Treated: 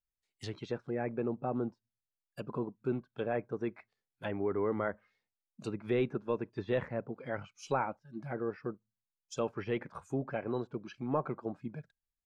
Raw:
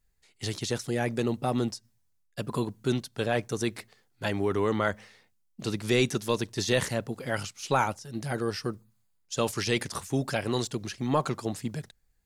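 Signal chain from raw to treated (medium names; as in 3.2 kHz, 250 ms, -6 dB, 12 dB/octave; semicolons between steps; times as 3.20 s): low-pass that closes with the level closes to 2 kHz, closed at -27 dBFS; spectral noise reduction 15 dB; dynamic bell 450 Hz, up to +4 dB, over -37 dBFS, Q 0.87; trim -8.5 dB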